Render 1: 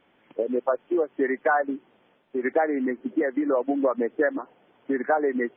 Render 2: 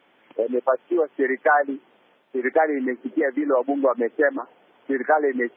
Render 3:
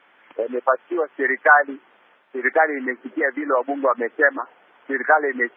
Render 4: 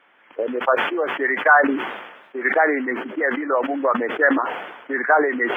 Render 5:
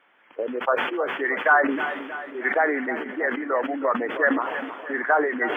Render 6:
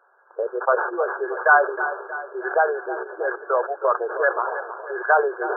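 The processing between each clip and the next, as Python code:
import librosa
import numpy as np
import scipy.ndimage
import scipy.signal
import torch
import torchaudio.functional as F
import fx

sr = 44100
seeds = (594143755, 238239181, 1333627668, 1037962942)

y1 = fx.highpass(x, sr, hz=360.0, slope=6)
y1 = y1 * librosa.db_to_amplitude(5.0)
y2 = fx.peak_eq(y1, sr, hz=1500.0, db=13.5, octaves=2.2)
y2 = y2 * librosa.db_to_amplitude(-5.5)
y3 = fx.sustainer(y2, sr, db_per_s=54.0)
y3 = y3 * librosa.db_to_amplitude(-1.0)
y4 = fx.echo_feedback(y3, sr, ms=317, feedback_pct=55, wet_db=-12.0)
y4 = y4 * librosa.db_to_amplitude(-4.0)
y5 = fx.brickwall_bandpass(y4, sr, low_hz=350.0, high_hz=1700.0)
y5 = y5 * librosa.db_to_amplitude(3.0)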